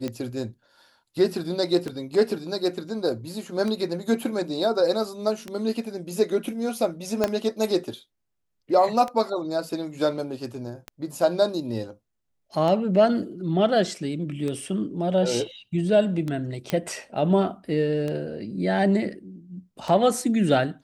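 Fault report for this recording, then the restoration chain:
scratch tick 33 1/3 rpm −17 dBFS
0:07.24: click −8 dBFS
0:16.70: click −11 dBFS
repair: click removal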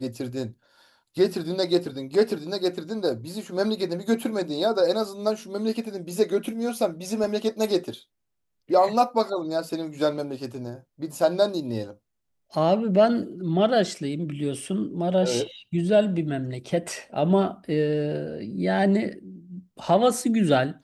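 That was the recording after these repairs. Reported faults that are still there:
0:07.24: click

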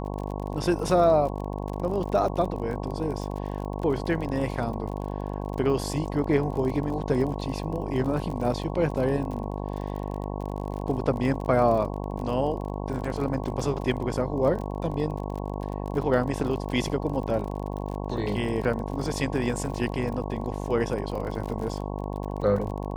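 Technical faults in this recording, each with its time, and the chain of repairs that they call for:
mains buzz 50 Hz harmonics 22 −32 dBFS
surface crackle 37 per second −33 dBFS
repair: click removal
hum removal 50 Hz, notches 22

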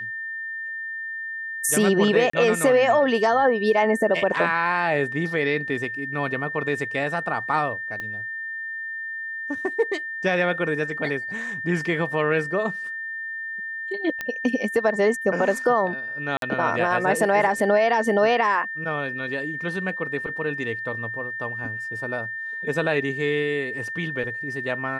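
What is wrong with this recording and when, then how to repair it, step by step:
whistle 1,800 Hz −29 dBFS
0:02.30–0:02.33: drop-out 34 ms
0:08.00: click −19 dBFS
0:14.21: click −14 dBFS
0:16.37–0:16.42: drop-out 52 ms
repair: click removal
notch filter 1,800 Hz, Q 30
repair the gap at 0:02.30, 34 ms
repair the gap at 0:16.37, 52 ms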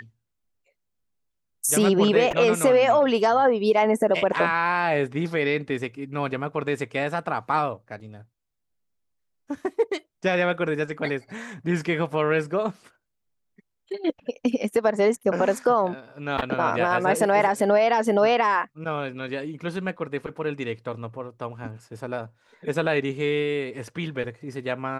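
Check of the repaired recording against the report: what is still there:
0:08.00: click

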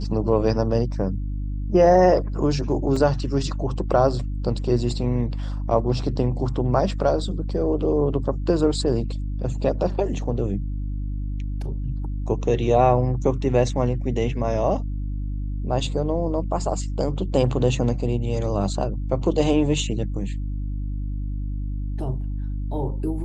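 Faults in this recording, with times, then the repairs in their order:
mains hum 50 Hz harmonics 6 −27 dBFS
0:02.96: drop-out 4 ms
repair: hum removal 50 Hz, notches 6
repair the gap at 0:02.96, 4 ms

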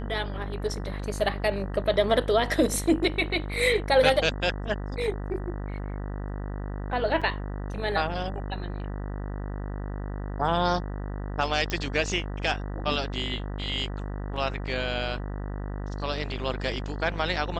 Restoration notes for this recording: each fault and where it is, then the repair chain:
mains buzz 50 Hz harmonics 39 −33 dBFS
0:07.21–0:07.22: drop-out 5.9 ms
0:11.70: click −15 dBFS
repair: click removal
hum removal 50 Hz, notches 39
repair the gap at 0:07.21, 5.9 ms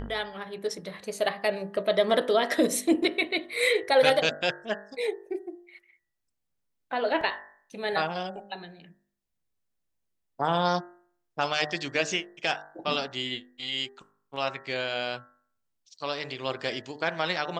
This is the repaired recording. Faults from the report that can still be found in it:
none of them is left

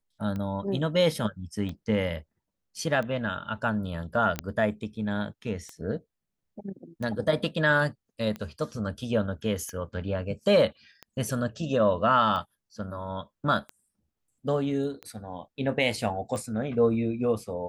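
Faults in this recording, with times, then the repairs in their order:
scratch tick 45 rpm −23 dBFS
0:04.39: click −13 dBFS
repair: click removal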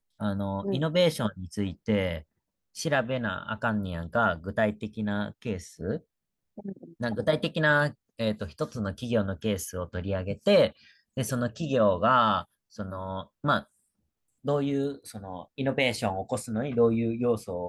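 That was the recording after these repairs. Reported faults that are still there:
0:04.39: click

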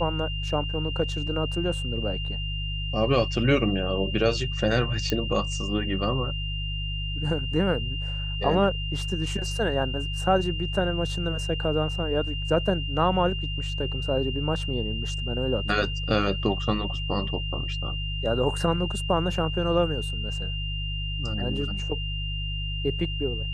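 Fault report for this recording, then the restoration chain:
mains hum 50 Hz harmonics 3 −31 dBFS
whistle 2,800 Hz −33 dBFS
0:05.10: click −12 dBFS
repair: click removal
notch filter 2,800 Hz, Q 30
hum removal 50 Hz, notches 3

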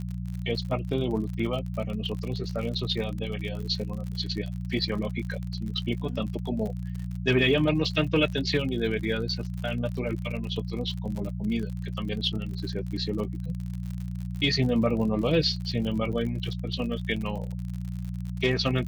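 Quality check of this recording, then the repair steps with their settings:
surface crackle 54 per second −34 dBFS
mains hum 60 Hz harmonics 3 −33 dBFS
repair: click removal
hum removal 60 Hz, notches 3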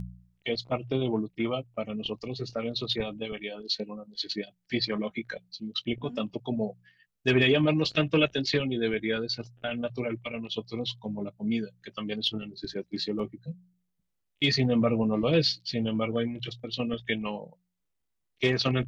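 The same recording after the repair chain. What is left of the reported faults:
none of them is left

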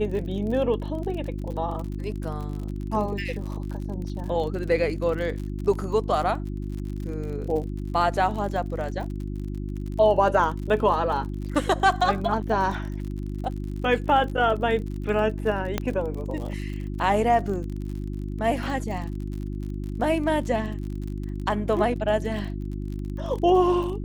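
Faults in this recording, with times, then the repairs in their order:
surface crackle 48 per second −33 dBFS
mains hum 50 Hz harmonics 7 −31 dBFS
0:15.78: click −10 dBFS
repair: click removal
hum removal 50 Hz, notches 7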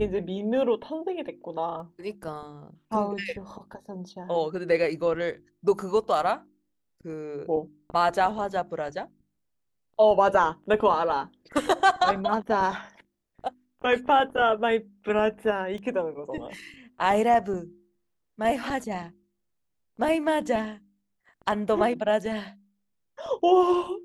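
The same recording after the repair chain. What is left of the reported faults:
0:15.78: click

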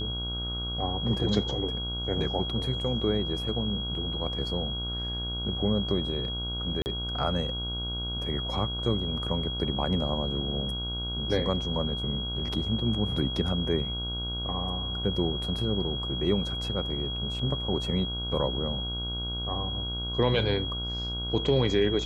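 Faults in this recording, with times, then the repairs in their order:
mains buzz 60 Hz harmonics 26 −35 dBFS
whistle 3,300 Hz −33 dBFS
0:06.82–0:06.86: drop-out 39 ms
0:17.39: drop-out 3.2 ms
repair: hum removal 60 Hz, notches 26
notch filter 3,300 Hz, Q 30
repair the gap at 0:06.82, 39 ms
repair the gap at 0:17.39, 3.2 ms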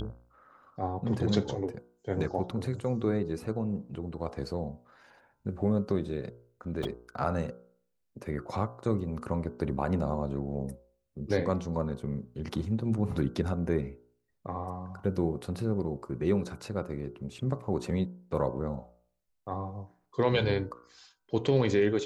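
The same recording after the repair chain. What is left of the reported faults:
none of them is left

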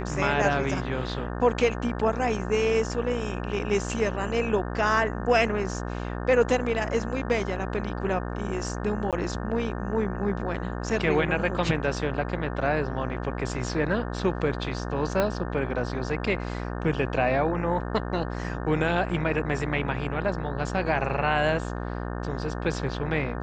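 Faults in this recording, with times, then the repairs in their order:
mains buzz 60 Hz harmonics 30 −32 dBFS
0:09.11–0:09.13: drop-out 17 ms
0:15.20: click −11 dBFS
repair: click removal
hum removal 60 Hz, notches 30
repair the gap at 0:09.11, 17 ms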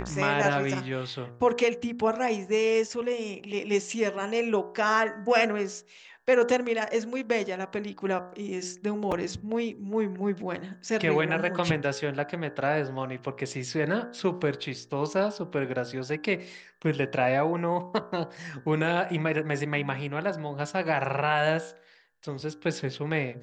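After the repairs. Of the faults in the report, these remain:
0:15.20: click

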